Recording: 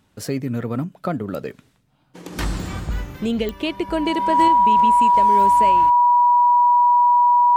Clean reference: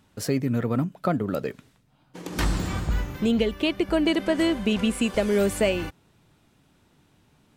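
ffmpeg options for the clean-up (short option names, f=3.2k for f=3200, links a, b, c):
-af "adeclick=t=4,bandreject=f=970:w=30,asetnsamples=n=441:p=0,asendcmd='4.48 volume volume 4.5dB',volume=0dB"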